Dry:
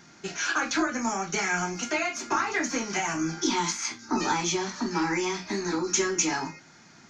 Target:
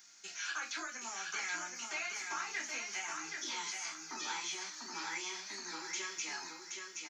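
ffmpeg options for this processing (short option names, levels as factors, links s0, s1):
-filter_complex "[0:a]acrossover=split=3600[s0][s1];[s1]acompressor=threshold=0.00501:ratio=4:attack=1:release=60[s2];[s0][s2]amix=inputs=2:normalize=0,aderivative,aecho=1:1:774|1548|2322|3096:0.596|0.173|0.0501|0.0145,volume=1.12"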